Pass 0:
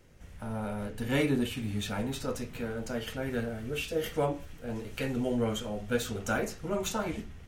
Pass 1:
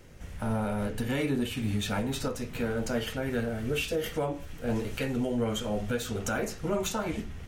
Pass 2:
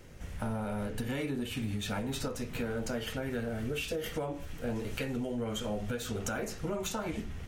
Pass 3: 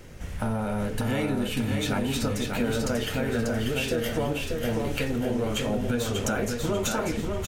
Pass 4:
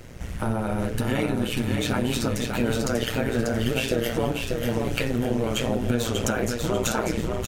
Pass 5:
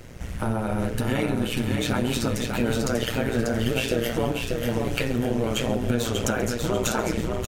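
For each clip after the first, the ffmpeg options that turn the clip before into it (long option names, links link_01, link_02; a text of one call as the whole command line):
ffmpeg -i in.wav -af "alimiter=level_in=3dB:limit=-24dB:level=0:latency=1:release=428,volume=-3dB,volume=7dB" out.wav
ffmpeg -i in.wav -af "acompressor=threshold=-31dB:ratio=6" out.wav
ffmpeg -i in.wav -af "aecho=1:1:591|1182|1773|2364|2955:0.631|0.24|0.0911|0.0346|0.0132,volume=6.5dB" out.wav
ffmpeg -i in.wav -af "tremolo=f=120:d=0.788,volume=5.5dB" out.wav
ffmpeg -i in.wav -filter_complex "[0:a]asplit=2[link_01][link_02];[link_02]adelay=134.1,volume=-16dB,highshelf=frequency=4000:gain=-3.02[link_03];[link_01][link_03]amix=inputs=2:normalize=0" out.wav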